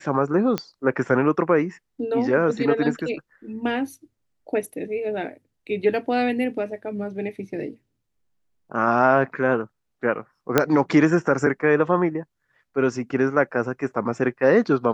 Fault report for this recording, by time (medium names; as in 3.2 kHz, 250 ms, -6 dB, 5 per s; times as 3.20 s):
0.58 s: pop -10 dBFS
10.58 s: pop -2 dBFS